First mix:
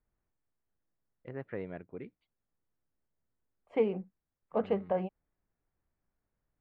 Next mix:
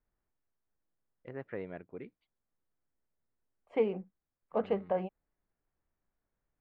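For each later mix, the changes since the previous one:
master: add peaking EQ 99 Hz -4 dB 2.5 oct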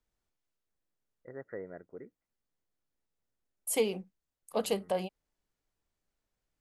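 first voice: add rippled Chebyshev low-pass 2 kHz, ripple 6 dB; master: remove low-pass 2 kHz 24 dB/octave

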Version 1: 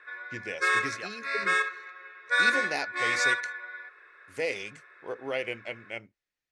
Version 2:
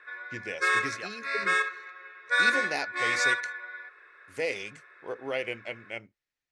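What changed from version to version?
no change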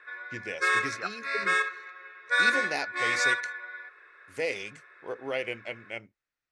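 second voice: add resonant low-pass 1.4 kHz, resonance Q 4

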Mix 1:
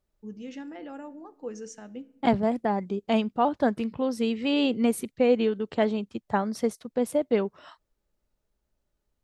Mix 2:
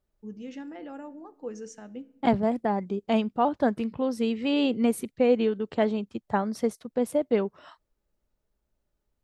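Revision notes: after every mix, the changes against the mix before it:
master: add peaking EQ 5.5 kHz -2.5 dB 3 oct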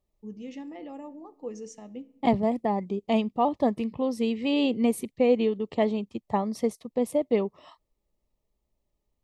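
master: add Butterworth band-stop 1.5 kHz, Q 2.7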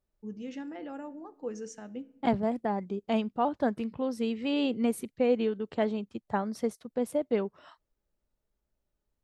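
second voice -4.0 dB; master: remove Butterworth band-stop 1.5 kHz, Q 2.7

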